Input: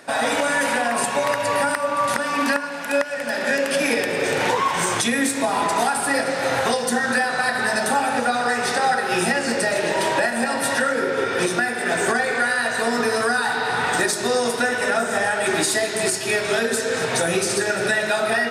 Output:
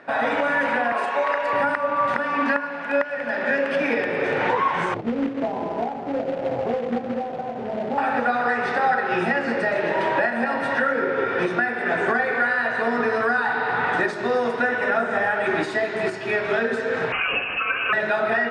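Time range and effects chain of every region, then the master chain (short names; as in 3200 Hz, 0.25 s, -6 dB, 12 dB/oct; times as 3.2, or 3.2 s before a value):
0.92–1.53 HPF 410 Hz + doubler 35 ms -8 dB
4.94–7.98 inverse Chebyshev low-pass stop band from 3100 Hz, stop band 70 dB + companded quantiser 4-bit
17.12–17.93 low shelf 160 Hz +8.5 dB + inverted band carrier 3000 Hz
whole clip: Chebyshev low-pass 1900 Hz, order 2; low shelf 77 Hz -6 dB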